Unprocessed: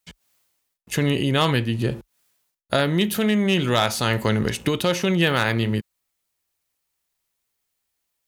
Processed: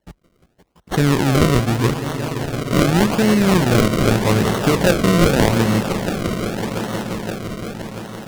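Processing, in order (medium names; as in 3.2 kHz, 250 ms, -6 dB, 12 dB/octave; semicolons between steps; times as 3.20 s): echo with a slow build-up 172 ms, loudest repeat 5, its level -14 dB; decimation with a swept rate 35×, swing 100% 0.83 Hz; loudspeaker Doppler distortion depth 0.18 ms; trim +5 dB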